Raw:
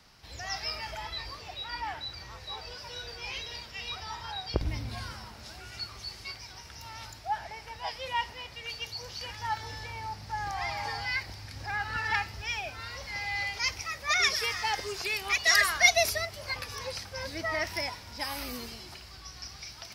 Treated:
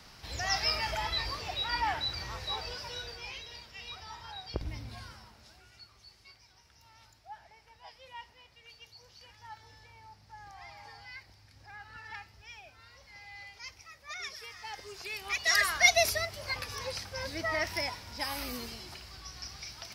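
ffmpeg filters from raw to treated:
-af "volume=10,afade=t=out:st=2.39:d=0.99:silence=0.266073,afade=t=out:st=4.86:d=0.96:silence=0.354813,afade=t=in:st=14.5:d=0.57:silence=0.446684,afade=t=in:st=15.07:d=0.92:silence=0.398107"

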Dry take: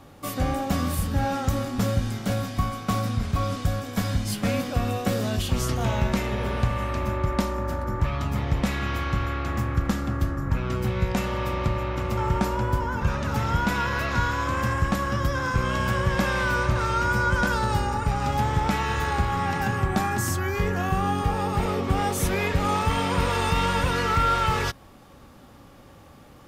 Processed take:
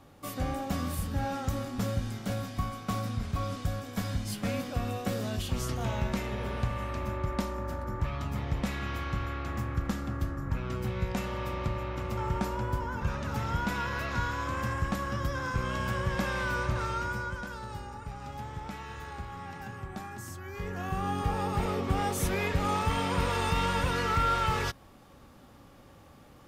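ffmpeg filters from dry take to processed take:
-af "volume=1.58,afade=t=out:st=16.82:d=0.6:silence=0.354813,afade=t=in:st=20.43:d=0.9:silence=0.281838"

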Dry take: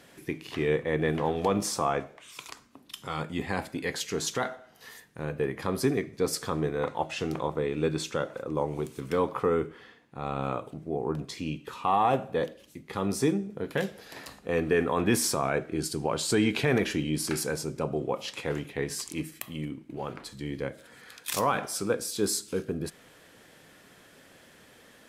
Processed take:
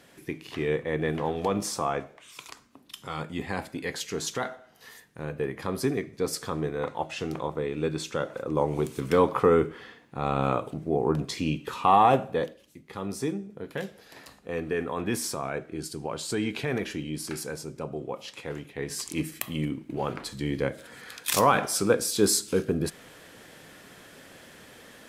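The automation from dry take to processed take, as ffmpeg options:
-af "volume=5.96,afade=t=in:st=8.04:d=0.89:silence=0.473151,afade=t=out:st=11.98:d=0.66:silence=0.316228,afade=t=in:st=18.74:d=0.61:silence=0.316228"

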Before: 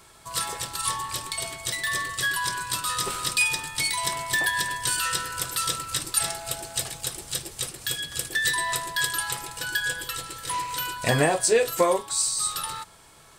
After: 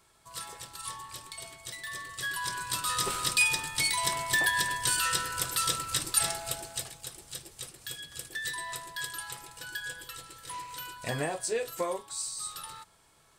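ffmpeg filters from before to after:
-af "volume=0.794,afade=t=in:st=2.03:d=1.01:silence=0.316228,afade=t=out:st=6.37:d=0.58:silence=0.354813"

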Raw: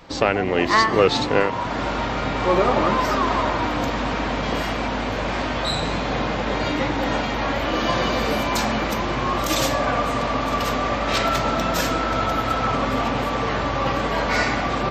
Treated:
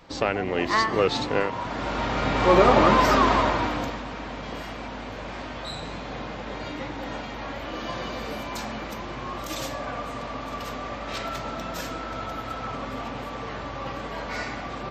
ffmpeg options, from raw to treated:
-af "volume=1.26,afade=t=in:st=1.8:d=0.83:silence=0.421697,afade=t=out:st=3.18:d=0.85:silence=0.223872"

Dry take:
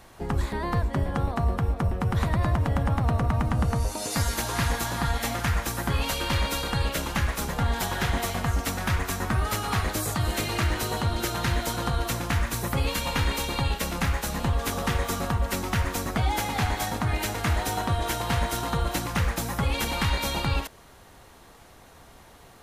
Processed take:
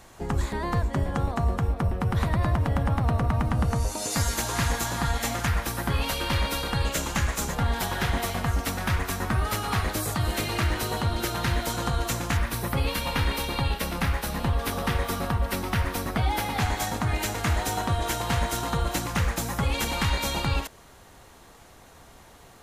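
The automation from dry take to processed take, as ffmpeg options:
-af "asetnsamples=n=441:p=0,asendcmd='1.67 equalizer g -2;3.71 equalizer g 4.5;5.47 equalizer g -3.5;6.85 equalizer g 8;7.55 equalizer g -2.5;11.7 equalizer g 4;12.37 equalizer g -7.5;16.6 equalizer g 3',equalizer=f=7000:t=o:w=0.44:g=6"

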